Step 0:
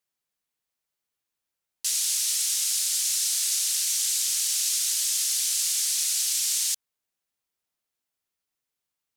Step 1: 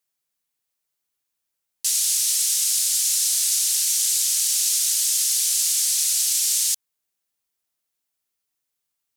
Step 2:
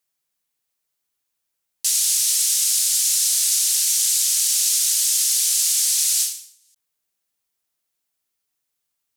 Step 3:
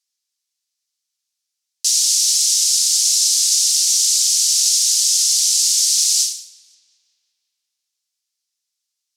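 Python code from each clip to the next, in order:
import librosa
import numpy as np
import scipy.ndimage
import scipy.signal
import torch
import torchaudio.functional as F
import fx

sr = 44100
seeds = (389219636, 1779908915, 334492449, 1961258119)

y1 = fx.high_shelf(x, sr, hz=5100.0, db=6.5)
y2 = fx.end_taper(y1, sr, db_per_s=110.0)
y2 = y2 * 10.0 ** (2.0 / 20.0)
y3 = fx.bandpass_q(y2, sr, hz=5300.0, q=1.8)
y3 = fx.echo_tape(y3, sr, ms=178, feedback_pct=70, wet_db=-23.5, lp_hz=5500.0, drive_db=11.0, wow_cents=25)
y3 = y3 * 10.0 ** (8.0 / 20.0)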